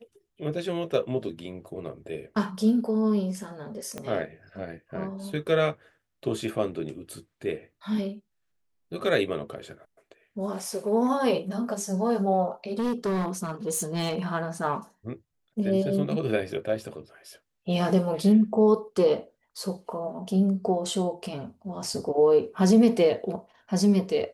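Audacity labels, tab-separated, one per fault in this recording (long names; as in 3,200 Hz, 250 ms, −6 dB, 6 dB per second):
3.980000	3.980000	click −20 dBFS
12.720000	14.260000	clipping −23 dBFS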